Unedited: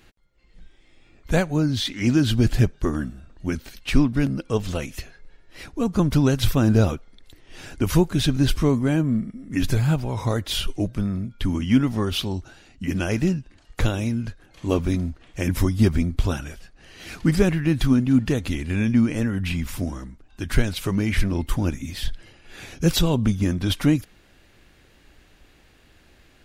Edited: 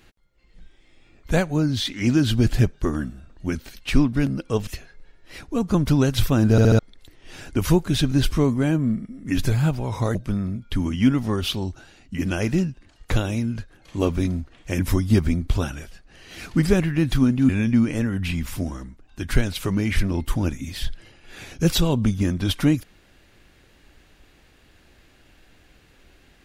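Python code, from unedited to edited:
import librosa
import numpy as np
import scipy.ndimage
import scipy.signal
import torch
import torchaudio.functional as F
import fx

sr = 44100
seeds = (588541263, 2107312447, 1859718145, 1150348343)

y = fx.edit(x, sr, fx.cut(start_s=4.67, length_s=0.25),
    fx.stutter_over(start_s=6.76, slice_s=0.07, count=4),
    fx.cut(start_s=10.4, length_s=0.44),
    fx.cut(start_s=18.18, length_s=0.52), tone=tone)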